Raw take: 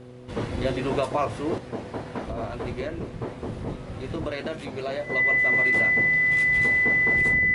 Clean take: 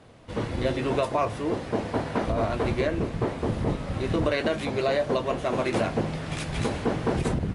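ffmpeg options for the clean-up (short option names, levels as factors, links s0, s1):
-af "bandreject=f=124.2:t=h:w=4,bandreject=f=248.4:t=h:w=4,bandreject=f=372.6:t=h:w=4,bandreject=f=496.8:t=h:w=4,bandreject=f=2000:w=30,asetnsamples=n=441:p=0,asendcmd='1.58 volume volume 6dB',volume=1"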